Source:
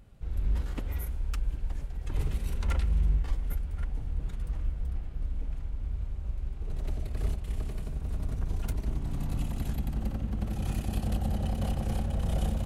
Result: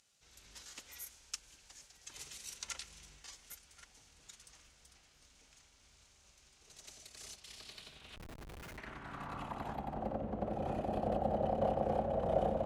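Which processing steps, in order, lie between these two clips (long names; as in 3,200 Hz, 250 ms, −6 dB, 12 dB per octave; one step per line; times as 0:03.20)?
band-pass filter sweep 6,200 Hz → 610 Hz, 0:07.24–0:10.19
0:08.16–0:08.78: comparator with hysteresis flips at −58.5 dBFS
level +11 dB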